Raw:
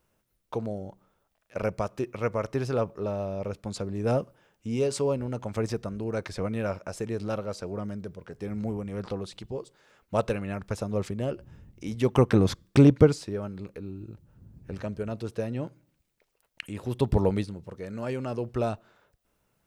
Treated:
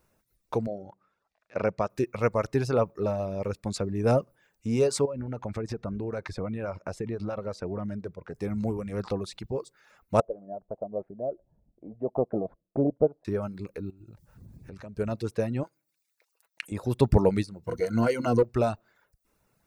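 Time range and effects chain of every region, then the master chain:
0:00.67–0:01.90: high-pass filter 160 Hz 6 dB per octave + high-frequency loss of the air 130 metres
0:05.05–0:08.35: low-pass filter 2,400 Hz 6 dB per octave + downward compressor 12 to 1, threshold −30 dBFS
0:10.20–0:13.25: transistor ladder low-pass 710 Hz, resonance 75% + parametric band 86 Hz −14 dB 0.96 octaves
0:13.90–0:14.97: downward compressor 3 to 1, threshold −46 dBFS + one half of a high-frequency compander encoder only
0:15.63–0:16.72: high-pass filter 1,100 Hz 6 dB per octave + comb filter 6.1 ms, depth 34%
0:17.67–0:18.43: EQ curve with evenly spaced ripples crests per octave 1.9, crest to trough 15 dB + leveller curve on the samples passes 1
whole clip: reverb reduction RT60 0.63 s; parametric band 3,100 Hz −9 dB 0.2 octaves; level +3.5 dB

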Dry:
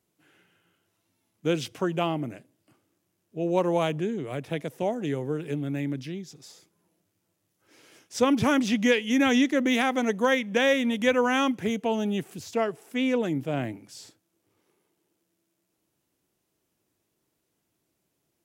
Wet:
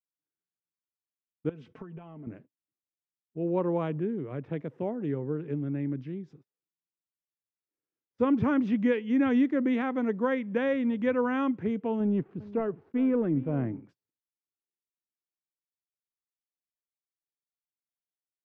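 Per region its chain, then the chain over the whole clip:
0:01.49–0:02.27: downward compressor 8 to 1, threshold −38 dBFS + comb filter 4.6 ms, depth 58%
0:12.00–0:13.82: leveller curve on the samples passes 1 + head-to-tape spacing loss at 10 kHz 24 dB + single-tap delay 401 ms −18.5 dB
whole clip: low-pass filter 1,200 Hz 12 dB per octave; noise gate −50 dBFS, range −36 dB; parametric band 700 Hz −8.5 dB 0.69 octaves; level −1 dB

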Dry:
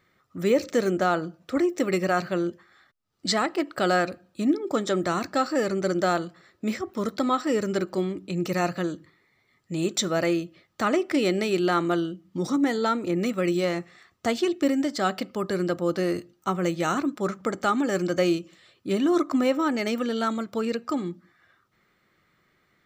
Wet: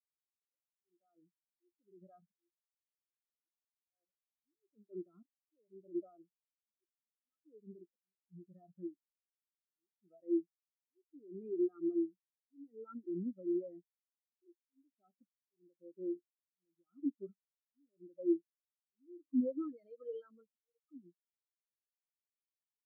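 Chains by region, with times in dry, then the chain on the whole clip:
0:19.68–0:20.82: high-shelf EQ 2,500 Hz +11 dB + comb filter 6.4 ms, depth 64%
whole clip: brickwall limiter −20 dBFS; volume swells 623 ms; every bin expanded away from the loudest bin 4 to 1; level −2.5 dB

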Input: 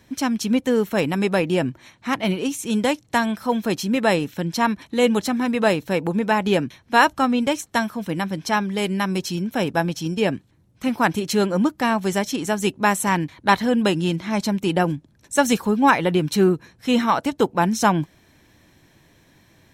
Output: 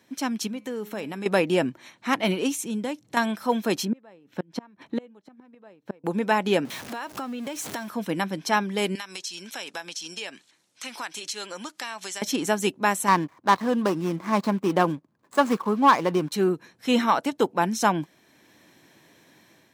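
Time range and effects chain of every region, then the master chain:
0:00.47–0:01.26: downward compressor 3 to 1, threshold −23 dBFS + tuned comb filter 210 Hz, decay 0.61 s, mix 50%
0:02.63–0:03.17: parametric band 130 Hz +9 dB 2.9 octaves + downward compressor 1.5 to 1, threshold −43 dBFS
0:03.85–0:06.04: low-pass filter 1,300 Hz 6 dB per octave + gate with flip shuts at −15 dBFS, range −31 dB
0:06.65–0:07.88: converter with a step at zero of −29 dBFS + downward compressor 10 to 1, threshold −29 dBFS
0:08.95–0:12.22: meter weighting curve ITU-R 468 + downward compressor 3 to 1, threshold −36 dBFS
0:13.08–0:16.32: running median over 15 samples + parametric band 1,100 Hz +11 dB 0.27 octaves + leveller curve on the samples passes 1
whole clip: high-pass filter 210 Hz 12 dB per octave; automatic gain control gain up to 6 dB; level −5 dB

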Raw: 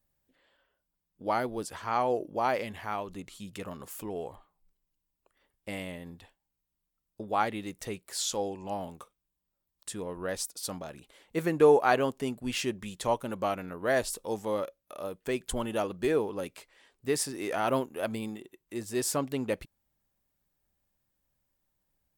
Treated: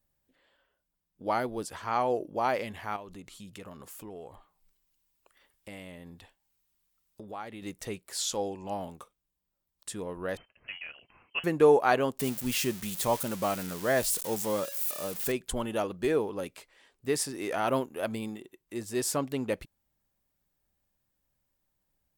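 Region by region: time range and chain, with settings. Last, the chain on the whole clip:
0:02.96–0:07.62: downward compressor 2 to 1, threshold −45 dBFS + one half of a high-frequency compander encoder only
0:10.37–0:11.44: parametric band 71 Hz −14 dB 2.5 octaves + voice inversion scrambler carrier 3,100 Hz
0:12.19–0:15.32: spike at every zero crossing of −26.5 dBFS + parametric band 160 Hz +6 dB 0.76 octaves
whole clip: no processing

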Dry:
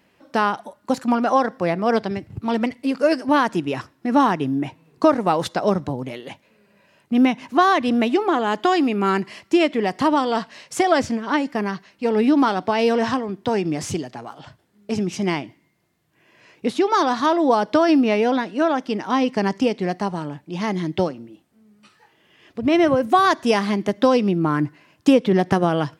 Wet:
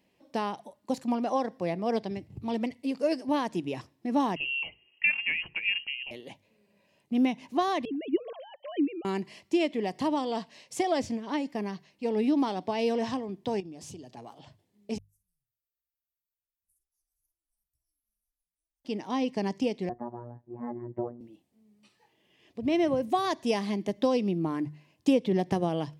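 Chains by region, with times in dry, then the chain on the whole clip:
0:04.36–0:06.11: voice inversion scrambler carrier 3,000 Hz + mains-hum notches 60/120/180/240/300/360/420/480 Hz
0:07.85–0:09.05: three sine waves on the formant tracks + parametric band 960 Hz −12.5 dB 2 octaves + one half of a high-frequency compander decoder only
0:13.60–0:14.17: parametric band 2,100 Hz −9.5 dB 0.22 octaves + downward compressor 4 to 1, threshold −33 dBFS
0:14.98–0:18.85: inverse Chebyshev band-stop filter 230–3,500 Hz, stop band 80 dB + double-tracking delay 50 ms −10.5 dB
0:19.89–0:21.21: Butterworth low-pass 1,600 Hz 48 dB per octave + phases set to zero 120 Hz
whole clip: parametric band 1,400 Hz −14 dB 0.57 octaves; mains-hum notches 50/100/150 Hz; level −8.5 dB

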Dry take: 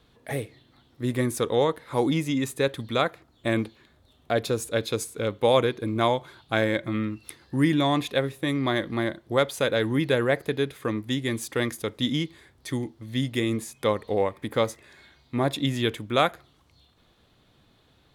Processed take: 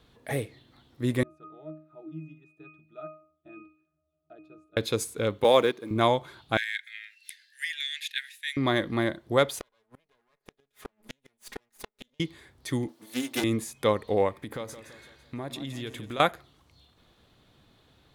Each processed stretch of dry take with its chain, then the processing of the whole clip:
0:01.23–0:04.77: high-pass filter 320 Hz 6 dB per octave + resonances in every octave D#, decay 0.43 s
0:05.44–0:05.91: mu-law and A-law mismatch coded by mu + high-pass filter 230 Hz + noise gate −27 dBFS, range −8 dB
0:06.57–0:08.57: Butterworth high-pass 1,600 Hz 96 dB per octave + high-shelf EQ 11,000 Hz −5 dB
0:09.59–0:12.20: lower of the sound and its delayed copy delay 4.8 ms + low-shelf EQ 410 Hz −8 dB + gate with flip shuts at −24 dBFS, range −41 dB
0:12.88–0:13.44: lower of the sound and its delayed copy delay 3.4 ms + high-pass filter 160 Hz 24 dB per octave + high-shelf EQ 5,500 Hz +10.5 dB
0:14.35–0:16.20: downward compressor 4 to 1, threshold −34 dBFS + repeating echo 167 ms, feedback 47%, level −11.5 dB
whole clip: no processing

